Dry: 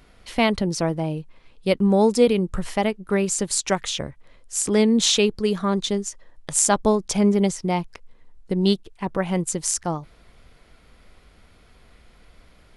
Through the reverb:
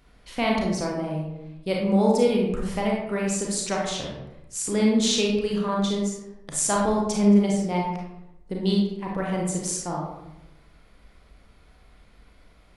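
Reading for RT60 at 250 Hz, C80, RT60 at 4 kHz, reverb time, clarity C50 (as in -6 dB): 1.1 s, 5.0 dB, 0.50 s, 0.90 s, 1.0 dB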